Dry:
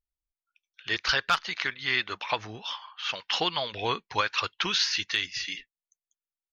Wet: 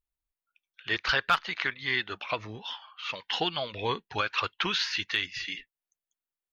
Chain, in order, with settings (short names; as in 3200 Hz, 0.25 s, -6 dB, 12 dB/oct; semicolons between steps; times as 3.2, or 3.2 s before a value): bell 5800 Hz -9.5 dB 1 oct; 1.73–4.31 cascading phaser falling 1.5 Hz; gain +1 dB